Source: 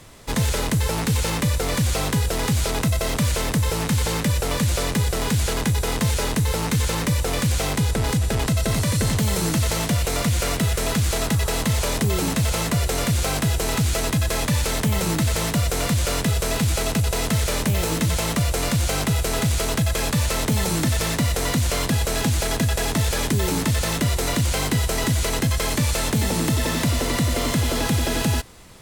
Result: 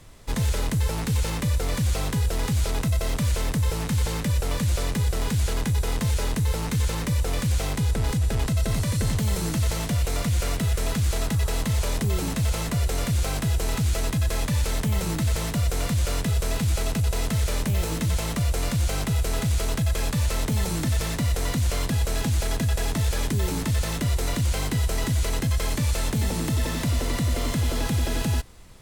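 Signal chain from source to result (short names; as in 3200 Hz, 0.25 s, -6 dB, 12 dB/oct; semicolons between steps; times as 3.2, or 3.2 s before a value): low shelf 81 Hz +11 dB; gain -6.5 dB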